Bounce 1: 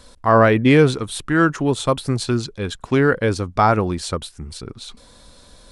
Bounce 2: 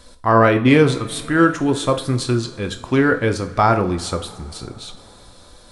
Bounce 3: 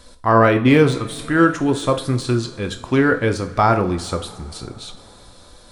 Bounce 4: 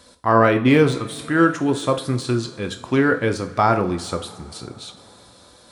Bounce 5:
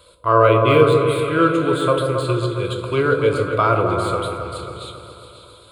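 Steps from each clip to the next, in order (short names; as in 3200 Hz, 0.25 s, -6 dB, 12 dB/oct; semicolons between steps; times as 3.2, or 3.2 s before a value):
two-slope reverb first 0.41 s, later 4.4 s, from -21 dB, DRR 6 dB
de-esser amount 55%
HPF 100 Hz; gain -1.5 dB
fixed phaser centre 1200 Hz, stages 8; repeats that get brighter 0.135 s, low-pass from 750 Hz, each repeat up 1 oct, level -3 dB; gain +3 dB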